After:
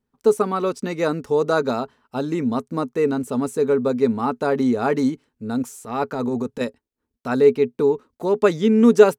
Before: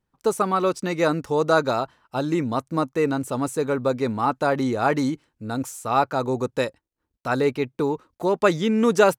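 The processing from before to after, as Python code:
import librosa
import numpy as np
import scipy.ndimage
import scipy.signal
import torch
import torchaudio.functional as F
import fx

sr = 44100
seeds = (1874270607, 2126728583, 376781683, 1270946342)

y = fx.transient(x, sr, attack_db=-10, sustain_db=2, at=(5.68, 6.61))
y = fx.small_body(y, sr, hz=(240.0, 420.0), ring_ms=85, db=12)
y = F.gain(torch.from_numpy(y), -2.5).numpy()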